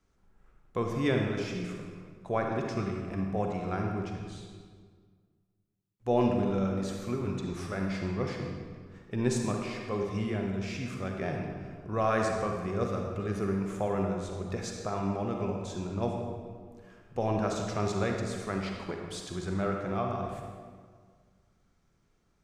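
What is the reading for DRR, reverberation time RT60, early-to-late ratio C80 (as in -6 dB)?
1.5 dB, 1.8 s, 4.0 dB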